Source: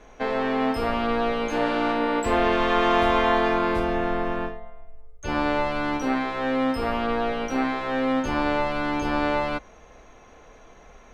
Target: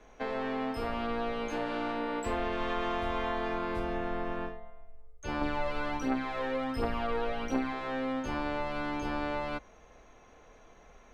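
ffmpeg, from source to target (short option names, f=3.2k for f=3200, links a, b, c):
-filter_complex "[0:a]acrossover=split=140[a][b];[b]acompressor=threshold=-24dB:ratio=3[c];[a][c]amix=inputs=2:normalize=0,asettb=1/sr,asplit=3[d][e][f];[d]atrim=end=5.414[g];[e]atrim=start=5.41:end=7.73,asetpts=PTS-STARTPTS,afade=t=in:d=0.004:c=qsin,afade=t=out:st=2.316:d=0.004:c=qsin,aphaser=in_gain=1:out_gain=1:delay=2.4:decay=0.48:speed=1.4:type=triangular[h];[f]atrim=start=7.726[i];[g][h]acrossfade=d=0.004:c1=hsin:c2=qsin[j];[j][i]acrossfade=d=0.004:c1=qsin:c2=hsin,volume=-7dB"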